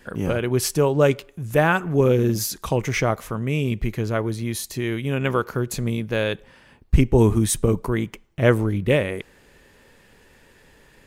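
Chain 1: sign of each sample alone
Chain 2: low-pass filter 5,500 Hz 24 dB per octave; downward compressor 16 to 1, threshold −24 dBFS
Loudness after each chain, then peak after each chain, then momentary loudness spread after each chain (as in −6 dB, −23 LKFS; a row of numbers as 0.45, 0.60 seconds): −22.0, −30.5 LKFS; −22.5, −14.0 dBFS; 2, 4 LU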